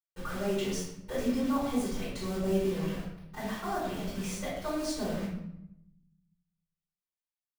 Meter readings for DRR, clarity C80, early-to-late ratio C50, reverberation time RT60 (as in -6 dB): -11.5 dB, 4.5 dB, 1.0 dB, 0.80 s